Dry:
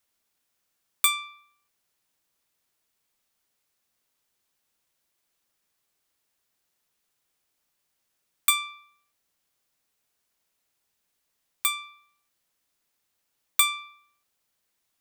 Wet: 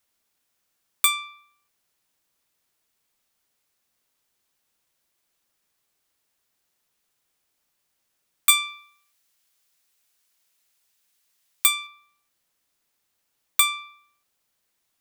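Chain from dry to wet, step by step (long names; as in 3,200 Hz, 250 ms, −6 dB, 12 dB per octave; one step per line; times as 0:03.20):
0:08.49–0:11.87: tilt shelving filter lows −5.5 dB, about 1,200 Hz
level +2 dB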